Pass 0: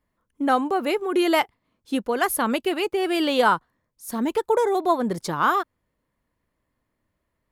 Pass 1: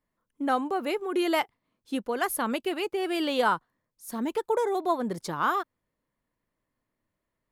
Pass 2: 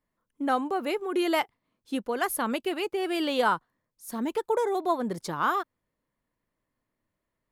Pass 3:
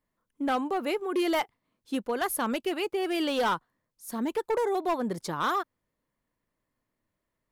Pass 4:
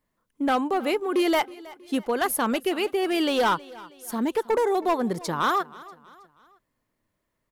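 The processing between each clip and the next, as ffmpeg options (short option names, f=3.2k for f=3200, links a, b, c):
-af "equalizer=f=64:w=2.5:g=-12.5,volume=-5.5dB"
-af anull
-af "asoftclip=type=hard:threshold=-22dB"
-af "aecho=1:1:320|640|960:0.0944|0.0415|0.0183,volume=4.5dB"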